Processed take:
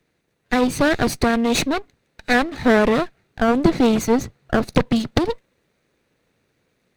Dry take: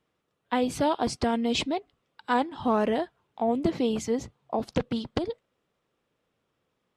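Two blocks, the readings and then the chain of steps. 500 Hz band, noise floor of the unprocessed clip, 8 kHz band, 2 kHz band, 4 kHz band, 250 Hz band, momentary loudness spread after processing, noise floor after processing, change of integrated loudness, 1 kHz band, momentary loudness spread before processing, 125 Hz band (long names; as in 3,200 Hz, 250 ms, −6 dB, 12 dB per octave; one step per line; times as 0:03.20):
+8.0 dB, −78 dBFS, +10.0 dB, +14.5 dB, +7.0 dB, +9.5 dB, 8 LU, −70 dBFS, +8.5 dB, +5.5 dB, 8 LU, +11.0 dB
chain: lower of the sound and its delayed copy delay 0.48 ms
in parallel at 0 dB: speech leveller 2 s
on the sum: level +4 dB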